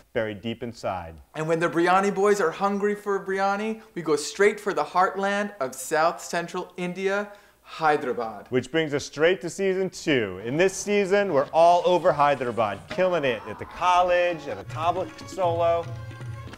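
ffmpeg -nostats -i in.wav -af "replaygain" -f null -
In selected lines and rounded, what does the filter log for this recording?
track_gain = +3.5 dB
track_peak = 0.257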